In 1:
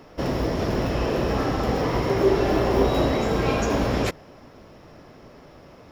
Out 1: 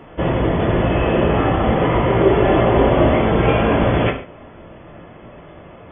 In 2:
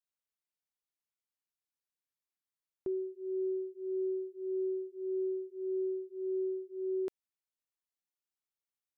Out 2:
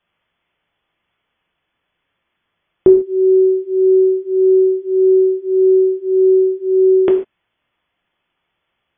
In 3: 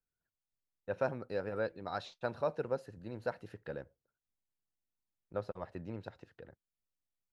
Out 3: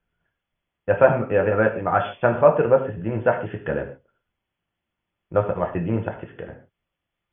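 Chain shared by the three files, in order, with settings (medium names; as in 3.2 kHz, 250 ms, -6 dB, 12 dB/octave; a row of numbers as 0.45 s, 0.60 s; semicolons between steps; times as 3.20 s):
brick-wall FIR low-pass 3.5 kHz; gated-style reverb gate 170 ms falling, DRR 2.5 dB; peak normalisation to -1.5 dBFS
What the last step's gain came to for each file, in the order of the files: +5.5 dB, +27.0 dB, +16.5 dB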